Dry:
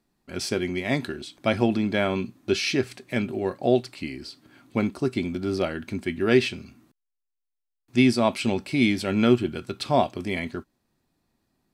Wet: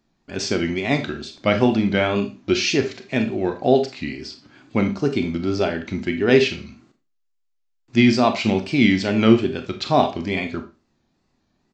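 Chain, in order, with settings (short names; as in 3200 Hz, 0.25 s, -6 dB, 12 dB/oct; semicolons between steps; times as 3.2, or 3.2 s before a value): downsampling 16000 Hz; wow and flutter 110 cents; Schroeder reverb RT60 0.31 s, combs from 28 ms, DRR 7 dB; gain +4 dB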